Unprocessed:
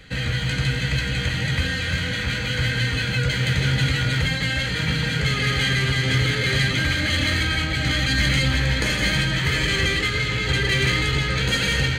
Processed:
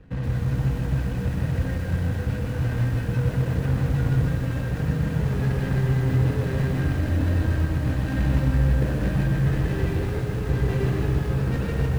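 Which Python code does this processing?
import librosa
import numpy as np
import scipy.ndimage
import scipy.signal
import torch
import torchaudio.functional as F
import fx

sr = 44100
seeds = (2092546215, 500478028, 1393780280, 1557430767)

p1 = scipy.signal.medfilt(x, 41)
p2 = fx.lowpass(p1, sr, hz=3100.0, slope=6)
p3 = p2 + fx.echo_feedback(p2, sr, ms=160, feedback_pct=19, wet_db=-7.5, dry=0)
y = fx.echo_crushed(p3, sr, ms=124, feedback_pct=55, bits=7, wet_db=-7.5)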